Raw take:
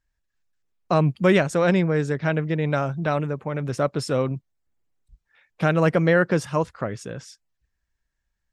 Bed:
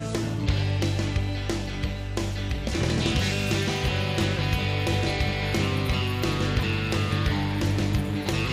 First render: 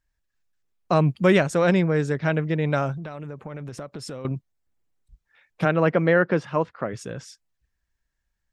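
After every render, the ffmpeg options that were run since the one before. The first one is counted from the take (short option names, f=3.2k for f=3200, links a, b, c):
-filter_complex "[0:a]asettb=1/sr,asplit=3[a][b][c];[a]atrim=end=2.974[d];[b]atrim=start=2.97:end=4.25,asetpts=PTS-STARTPTS,afade=t=in:d=0.004:c=qsin,afade=t=out:st=1.276:d=0.004:c=qsin,acompressor=threshold=-31dB:ratio=16:attack=3.2:release=140:knee=1:detection=peak[e];[c]atrim=start=4.246[f];[d][e]acrossfade=d=0.004:c1=hsin:c2=qsin[g];[g][f]acrossfade=d=0.004:c1=qsin:c2=hsin,asplit=3[h][i][j];[h]afade=t=out:st=5.64:d=0.02[k];[i]highpass=160,lowpass=3.1k,afade=t=in:st=5.64:d=0.02,afade=t=out:st=6.92:d=0.02[l];[j]afade=t=in:st=6.92:d=0.02[m];[k][l][m]amix=inputs=3:normalize=0"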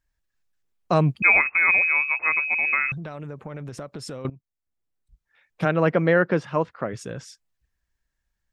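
-filter_complex "[0:a]asettb=1/sr,asplit=3[a][b][c];[a]atrim=end=1.224[d];[b]atrim=start=1.22:end=2.92,asetpts=PTS-STARTPTS,afade=t=in:d=0.004:c=qsin,afade=t=out:st=1.696:d=0.004:c=qsin,lowpass=f=2.3k:t=q:w=0.5098,lowpass=f=2.3k:t=q:w=0.6013,lowpass=f=2.3k:t=q:w=0.9,lowpass=f=2.3k:t=q:w=2.563,afreqshift=-2700[e];[c]atrim=start=2.916[f];[d][e]acrossfade=d=0.004:c1=hsin:c2=qsin[g];[g][f]acrossfade=d=0.004:c1=qsin:c2=hsin,asplit=2[h][i];[h]atrim=end=4.3,asetpts=PTS-STARTPTS,afade=t=out:st=4.296:d=0.004:c=hsin:silence=0.11885[j];[i]atrim=start=4.3,asetpts=PTS-STARTPTS,afade=t=in:d=1.55:silence=0.11885[k];[j][k]concat=n=2:v=0:a=1"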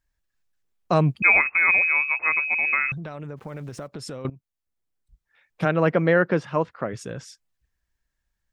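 -filter_complex "[0:a]asplit=3[a][b][c];[a]afade=t=out:st=3.36:d=0.02[d];[b]aeval=exprs='val(0)*gte(abs(val(0)),0.00237)':c=same,afade=t=in:st=3.36:d=0.02,afade=t=out:st=3.86:d=0.02[e];[c]afade=t=in:st=3.86:d=0.02[f];[d][e][f]amix=inputs=3:normalize=0"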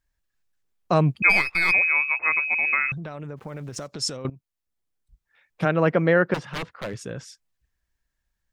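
-filter_complex "[0:a]asplit=3[a][b][c];[a]afade=t=out:st=1.29:d=0.02[d];[b]aeval=exprs='if(lt(val(0),0),0.447*val(0),val(0))':c=same,afade=t=in:st=1.29:d=0.02,afade=t=out:st=1.71:d=0.02[e];[c]afade=t=in:st=1.71:d=0.02[f];[d][e][f]amix=inputs=3:normalize=0,asettb=1/sr,asplit=3[g][h][i];[g]atrim=end=3.764[j];[h]atrim=start=3.76:end=4.17,asetpts=PTS-STARTPTS,afade=t=in:d=0.004:c=qsin,afade=t=out:st=0.406:d=0.004:c=qsin,equalizer=f=6.1k:w=0.92:g=14.5[k];[i]atrim=start=4.166[l];[j][k]acrossfade=d=0.004:c1=hsin:c2=qsin[m];[m][l]acrossfade=d=0.004:c1=qsin:c2=hsin,asettb=1/sr,asplit=3[n][o][p];[n]atrim=end=6.344[q];[o]atrim=start=6.34:end=7.03,asetpts=PTS-STARTPTS,afade=t=in:d=0.004:c=qsin,afade=t=out:st=0.686:d=0.004:c=qsin,aeval=exprs='0.0631*(abs(mod(val(0)/0.0631+3,4)-2)-1)':c=same[r];[p]atrim=start=7.026[s];[q][r]acrossfade=d=0.004:c1=hsin:c2=qsin[t];[t][s]acrossfade=d=0.004:c1=qsin:c2=hsin"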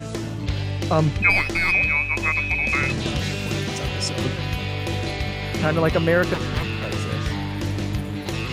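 -filter_complex "[1:a]volume=-1dB[a];[0:a][a]amix=inputs=2:normalize=0"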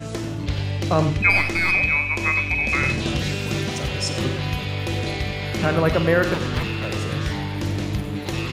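-filter_complex "[0:a]asplit=2[a][b];[b]adelay=48,volume=-13dB[c];[a][c]amix=inputs=2:normalize=0,asplit=2[d][e];[e]adelay=93.29,volume=-11dB,highshelf=f=4k:g=-2.1[f];[d][f]amix=inputs=2:normalize=0"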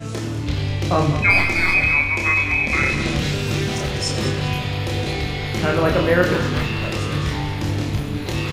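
-filter_complex "[0:a]asplit=2[a][b];[b]adelay=28,volume=-2.5dB[c];[a][c]amix=inputs=2:normalize=0,asplit=5[d][e][f][g][h];[e]adelay=199,afreqshift=-35,volume=-10dB[i];[f]adelay=398,afreqshift=-70,volume=-19.1dB[j];[g]adelay=597,afreqshift=-105,volume=-28.2dB[k];[h]adelay=796,afreqshift=-140,volume=-37.4dB[l];[d][i][j][k][l]amix=inputs=5:normalize=0"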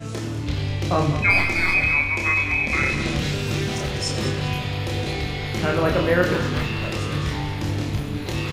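-af "volume=-2.5dB"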